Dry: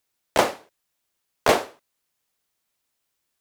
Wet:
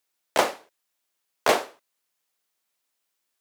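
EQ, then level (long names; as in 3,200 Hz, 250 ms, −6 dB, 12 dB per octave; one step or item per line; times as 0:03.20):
high-pass filter 340 Hz 6 dB per octave
−1.0 dB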